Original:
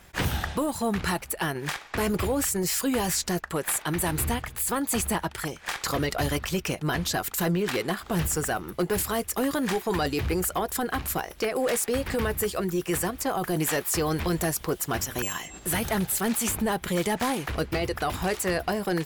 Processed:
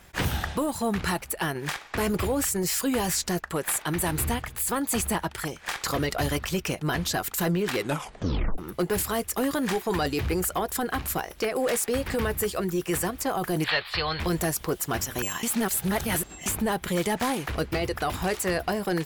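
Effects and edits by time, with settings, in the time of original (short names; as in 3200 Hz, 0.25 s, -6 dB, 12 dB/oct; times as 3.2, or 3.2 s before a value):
7.78 tape stop 0.80 s
13.64–14.2 EQ curve 110 Hz 0 dB, 270 Hz -16 dB, 580 Hz -2 dB, 4300 Hz +11 dB, 6300 Hz -26 dB
15.43–16.46 reverse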